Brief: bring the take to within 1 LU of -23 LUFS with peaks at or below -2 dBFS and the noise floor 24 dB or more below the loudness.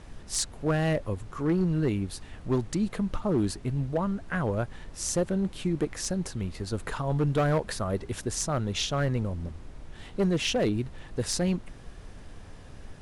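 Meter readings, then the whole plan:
clipped samples 1.3%; clipping level -19.5 dBFS; noise floor -46 dBFS; noise floor target -54 dBFS; loudness -29.5 LUFS; peak level -19.5 dBFS; loudness target -23.0 LUFS
-> clip repair -19.5 dBFS; noise print and reduce 8 dB; trim +6.5 dB

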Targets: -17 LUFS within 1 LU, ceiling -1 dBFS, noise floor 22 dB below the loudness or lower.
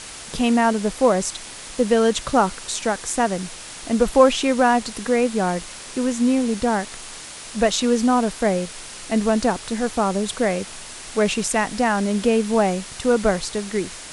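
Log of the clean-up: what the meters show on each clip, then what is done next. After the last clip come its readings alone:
noise floor -37 dBFS; noise floor target -43 dBFS; loudness -21.0 LUFS; peak level -2.5 dBFS; loudness target -17.0 LUFS
-> noise reduction 6 dB, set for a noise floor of -37 dBFS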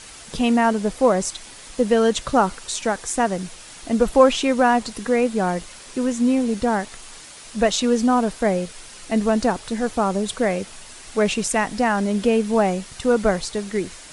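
noise floor -41 dBFS; noise floor target -43 dBFS
-> noise reduction 6 dB, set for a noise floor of -41 dBFS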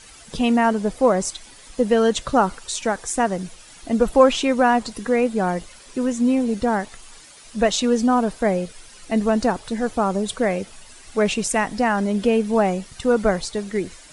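noise floor -45 dBFS; loudness -21.0 LUFS; peak level -2.5 dBFS; loudness target -17.0 LUFS
-> trim +4 dB; peak limiter -1 dBFS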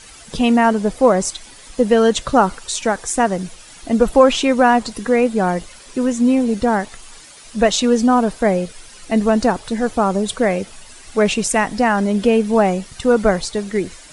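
loudness -17.0 LUFS; peak level -1.0 dBFS; noise floor -41 dBFS

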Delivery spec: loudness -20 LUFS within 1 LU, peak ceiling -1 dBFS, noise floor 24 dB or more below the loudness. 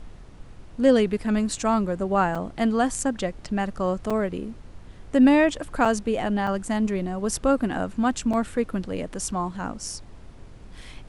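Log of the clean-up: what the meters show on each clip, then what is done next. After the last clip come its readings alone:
dropouts 5; longest dropout 4.8 ms; noise floor -45 dBFS; noise floor target -49 dBFS; loudness -24.5 LUFS; peak level -6.5 dBFS; loudness target -20.0 LUFS
-> interpolate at 2.35/4.10/5.85/6.47/8.33 s, 4.8 ms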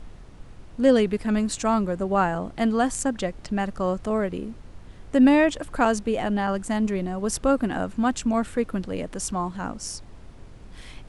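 dropouts 0; noise floor -45 dBFS; noise floor target -49 dBFS
-> noise print and reduce 6 dB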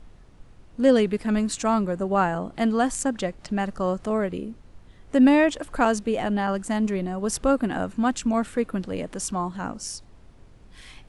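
noise floor -50 dBFS; loudness -24.5 LUFS; peak level -6.5 dBFS; loudness target -20.0 LUFS
-> trim +4.5 dB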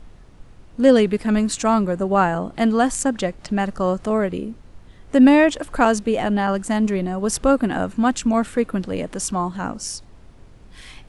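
loudness -20.0 LUFS; peak level -2.0 dBFS; noise floor -46 dBFS

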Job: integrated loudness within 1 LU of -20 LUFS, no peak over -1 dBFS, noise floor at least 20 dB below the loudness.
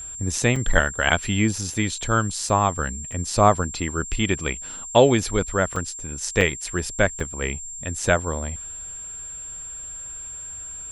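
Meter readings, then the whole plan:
dropouts 7; longest dropout 3.9 ms; steady tone 7.4 kHz; tone level -33 dBFS; loudness -23.5 LUFS; peak level -2.0 dBFS; loudness target -20.0 LUFS
-> interpolate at 0.56/1.74/2.49/3.12/5.76/6.41/7.20 s, 3.9 ms; band-stop 7.4 kHz, Q 30; trim +3.5 dB; peak limiter -1 dBFS

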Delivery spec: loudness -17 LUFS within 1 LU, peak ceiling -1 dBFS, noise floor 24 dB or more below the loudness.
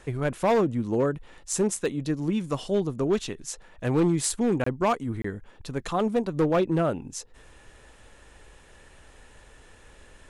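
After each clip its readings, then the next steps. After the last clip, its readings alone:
clipped samples 1.1%; clipping level -17.0 dBFS; dropouts 2; longest dropout 24 ms; loudness -26.5 LUFS; peak level -17.0 dBFS; loudness target -17.0 LUFS
-> clip repair -17 dBFS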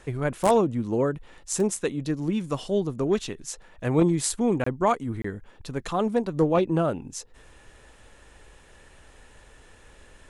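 clipped samples 0.0%; dropouts 2; longest dropout 24 ms
-> interpolate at 4.64/5.22 s, 24 ms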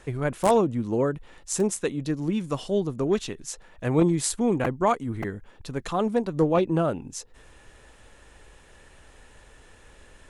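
dropouts 0; loudness -26.0 LUFS; peak level -8.0 dBFS; loudness target -17.0 LUFS
-> trim +9 dB; peak limiter -1 dBFS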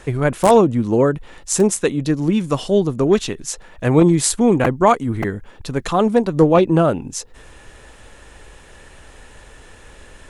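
loudness -17.0 LUFS; peak level -1.0 dBFS; noise floor -44 dBFS

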